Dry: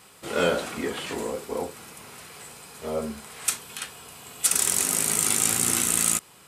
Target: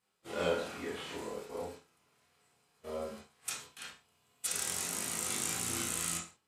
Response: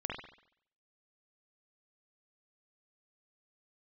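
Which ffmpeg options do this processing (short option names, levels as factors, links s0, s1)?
-filter_complex "[0:a]agate=range=0.141:threshold=0.0126:ratio=16:detection=peak[s0];[1:a]atrim=start_sample=2205,afade=t=out:st=0.43:d=0.01,atrim=end_sample=19404,asetrate=88200,aresample=44100[s1];[s0][s1]afir=irnorm=-1:irlink=0,volume=0.501"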